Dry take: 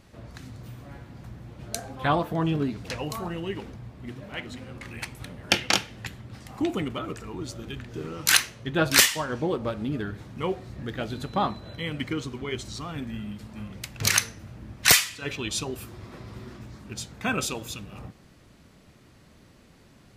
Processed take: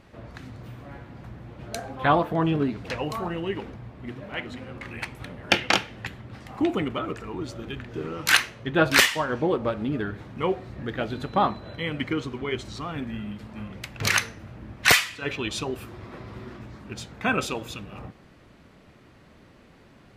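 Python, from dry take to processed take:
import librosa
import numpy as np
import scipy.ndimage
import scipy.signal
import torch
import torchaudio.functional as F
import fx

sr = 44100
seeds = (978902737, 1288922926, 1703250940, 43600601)

y = fx.bass_treble(x, sr, bass_db=-4, treble_db=-11)
y = F.gain(torch.from_numpy(y), 4.0).numpy()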